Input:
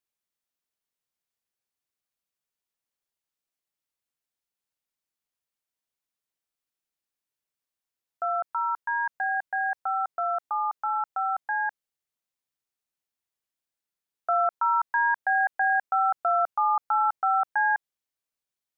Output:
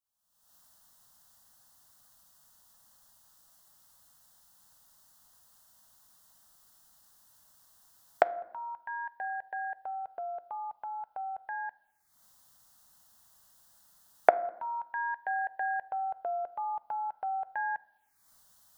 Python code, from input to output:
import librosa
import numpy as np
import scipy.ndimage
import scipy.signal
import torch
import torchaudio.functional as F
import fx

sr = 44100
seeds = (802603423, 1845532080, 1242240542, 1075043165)

y = fx.recorder_agc(x, sr, target_db=-25.5, rise_db_per_s=56.0, max_gain_db=30)
y = fx.env_phaser(y, sr, low_hz=380.0, high_hz=1300.0, full_db=-31.0)
y = fx.rev_fdn(y, sr, rt60_s=0.94, lf_ratio=1.3, hf_ratio=0.5, size_ms=28.0, drr_db=15.5)
y = y * 10.0 ** (-2.5 / 20.0)